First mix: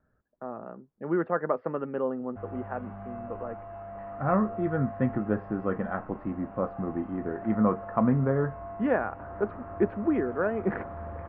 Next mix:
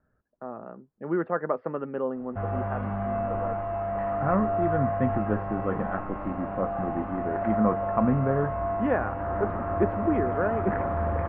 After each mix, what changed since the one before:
background +11.5 dB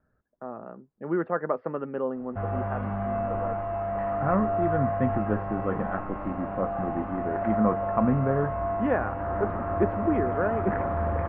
no change

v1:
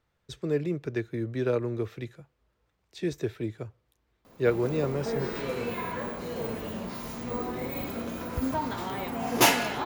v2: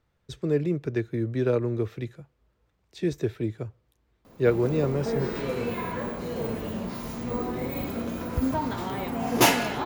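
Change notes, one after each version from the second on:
master: add bass shelf 460 Hz +5 dB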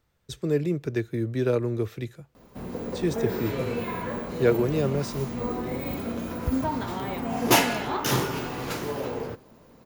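speech: remove low-pass 3.4 kHz 6 dB/octave; background: entry -1.90 s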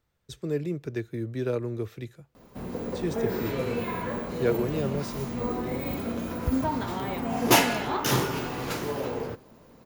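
speech -4.5 dB

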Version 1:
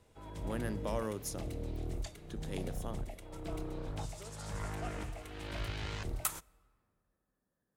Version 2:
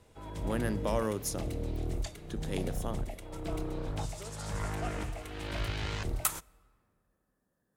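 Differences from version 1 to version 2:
speech +5.5 dB; background +4.5 dB

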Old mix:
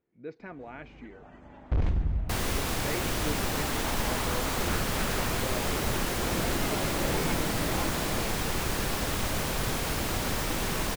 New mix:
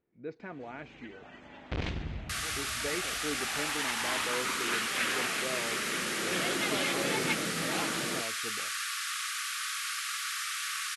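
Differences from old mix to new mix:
first sound: add frequency weighting D; second sound: add brick-wall FIR band-pass 1.1–12 kHz

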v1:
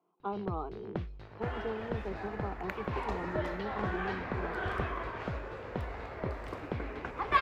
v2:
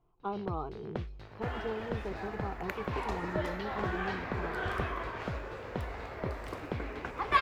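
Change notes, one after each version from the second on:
speech: remove steep high-pass 170 Hz 72 dB/octave; master: add treble shelf 4.8 kHz +8.5 dB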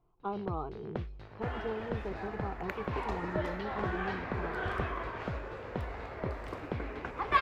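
master: add treble shelf 4.8 kHz -8.5 dB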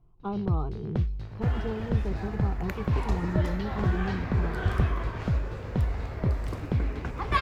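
master: add tone controls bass +14 dB, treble +11 dB

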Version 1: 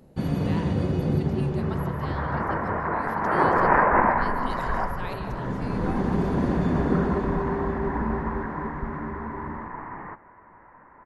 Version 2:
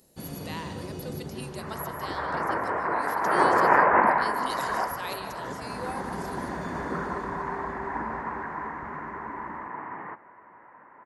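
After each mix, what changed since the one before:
first sound -9.0 dB; second sound: add high-pass 120 Hz; master: add tone controls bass -6 dB, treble +15 dB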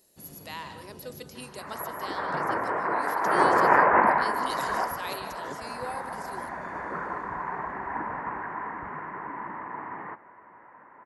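first sound -11.5 dB

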